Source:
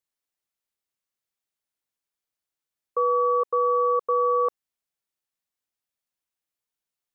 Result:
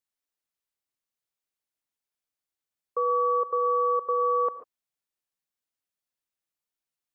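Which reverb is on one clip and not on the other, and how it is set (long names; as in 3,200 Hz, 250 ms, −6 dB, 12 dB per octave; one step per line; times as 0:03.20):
reverb whose tail is shaped and stops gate 160 ms rising, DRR 11.5 dB
level −3 dB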